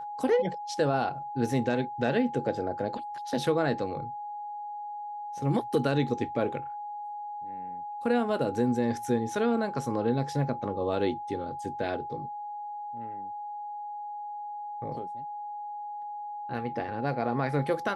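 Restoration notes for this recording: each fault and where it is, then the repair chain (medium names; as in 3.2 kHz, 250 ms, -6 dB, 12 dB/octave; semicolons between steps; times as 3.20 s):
whine 830 Hz -35 dBFS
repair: band-stop 830 Hz, Q 30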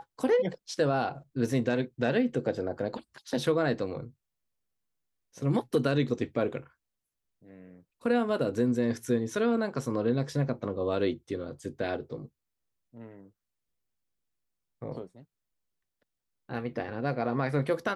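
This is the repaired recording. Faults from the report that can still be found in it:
nothing left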